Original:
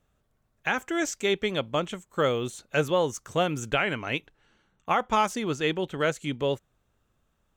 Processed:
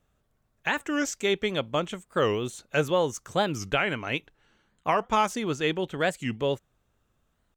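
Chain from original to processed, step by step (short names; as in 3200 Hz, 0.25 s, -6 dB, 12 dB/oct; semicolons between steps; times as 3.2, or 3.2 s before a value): record warp 45 rpm, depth 250 cents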